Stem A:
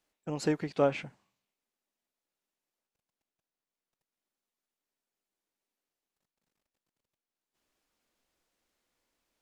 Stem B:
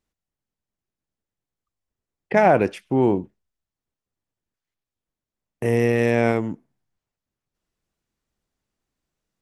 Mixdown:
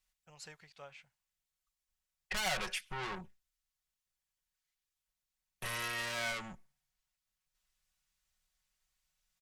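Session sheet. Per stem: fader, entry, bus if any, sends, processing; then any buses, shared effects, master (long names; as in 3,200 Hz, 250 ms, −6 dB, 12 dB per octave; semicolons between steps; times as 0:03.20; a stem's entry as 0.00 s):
−8.0 dB, 0.00 s, no send, automatic ducking −19 dB, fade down 1.75 s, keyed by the second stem
+3.0 dB, 0.00 s, no send, tube saturation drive 27 dB, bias 0.35; comb filter 5.4 ms, depth 78%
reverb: not used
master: guitar amp tone stack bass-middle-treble 10-0-10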